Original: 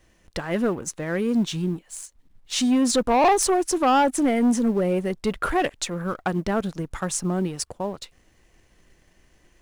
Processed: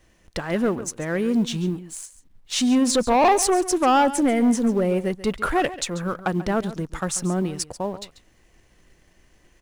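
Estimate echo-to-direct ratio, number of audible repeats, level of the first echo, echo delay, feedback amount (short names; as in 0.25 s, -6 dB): -15.5 dB, 1, -15.5 dB, 0.139 s, no steady repeat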